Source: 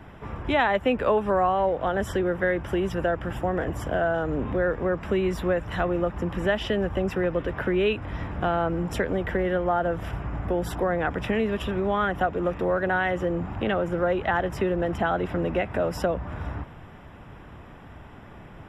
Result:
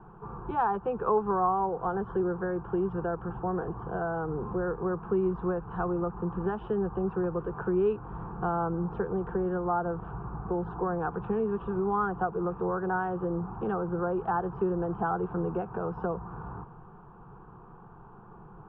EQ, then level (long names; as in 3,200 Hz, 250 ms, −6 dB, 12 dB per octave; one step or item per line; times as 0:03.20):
transistor ladder low-pass 1,800 Hz, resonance 25%
high-frequency loss of the air 100 metres
phaser with its sweep stopped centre 400 Hz, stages 8
+4.0 dB